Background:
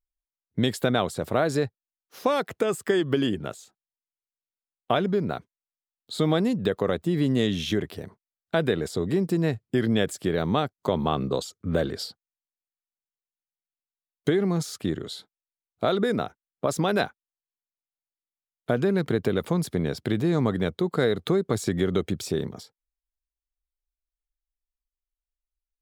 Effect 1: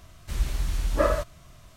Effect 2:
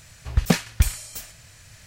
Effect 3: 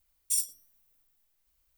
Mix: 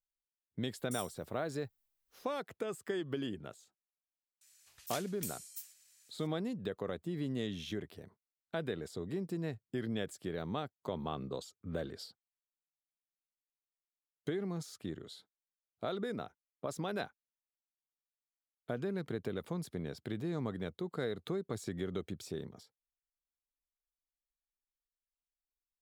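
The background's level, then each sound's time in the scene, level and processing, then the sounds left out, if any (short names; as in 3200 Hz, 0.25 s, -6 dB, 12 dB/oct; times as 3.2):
background -14 dB
0.61 add 3 -9.5 dB + compressor 2:1, threshold -36 dBFS
4.41 add 2 -12.5 dB + differentiator
not used: 1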